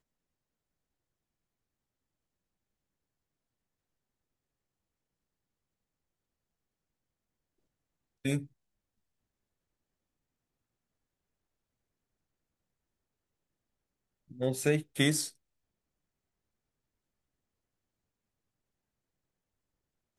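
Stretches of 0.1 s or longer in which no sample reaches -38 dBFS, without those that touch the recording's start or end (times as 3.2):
8.43–14.31
14.81–14.96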